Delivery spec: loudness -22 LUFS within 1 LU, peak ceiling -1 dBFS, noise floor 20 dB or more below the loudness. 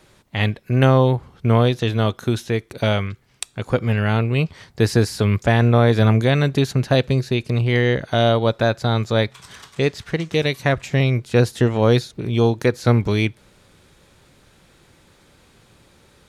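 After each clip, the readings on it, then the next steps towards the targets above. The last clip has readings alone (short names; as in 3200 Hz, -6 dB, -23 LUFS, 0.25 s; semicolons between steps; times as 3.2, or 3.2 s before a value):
loudness -19.5 LUFS; peak -2.0 dBFS; loudness target -22.0 LUFS
-> gain -2.5 dB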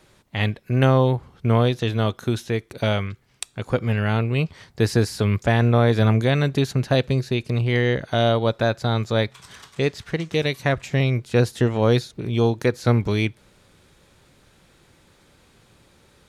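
loudness -22.0 LUFS; peak -4.5 dBFS; noise floor -57 dBFS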